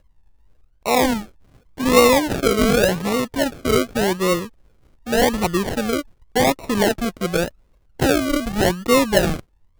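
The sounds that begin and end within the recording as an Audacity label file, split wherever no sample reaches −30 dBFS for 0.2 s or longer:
0.860000	1.230000	sound
1.780000	4.460000	sound
5.070000	6.010000	sound
6.360000	7.480000	sound
8.000000	9.400000	sound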